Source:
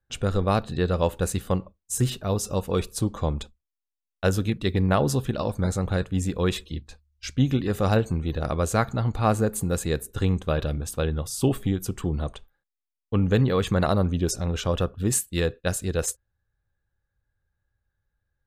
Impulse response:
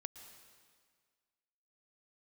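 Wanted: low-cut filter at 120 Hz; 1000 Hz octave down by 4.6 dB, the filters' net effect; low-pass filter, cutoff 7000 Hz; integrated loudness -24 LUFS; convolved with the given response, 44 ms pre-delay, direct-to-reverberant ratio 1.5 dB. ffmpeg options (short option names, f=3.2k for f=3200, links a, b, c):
-filter_complex "[0:a]highpass=120,lowpass=7k,equalizer=f=1k:t=o:g=-6.5,asplit=2[a][b];[1:a]atrim=start_sample=2205,adelay=44[c];[b][c]afir=irnorm=-1:irlink=0,volume=2.5dB[d];[a][d]amix=inputs=2:normalize=0,volume=1.5dB"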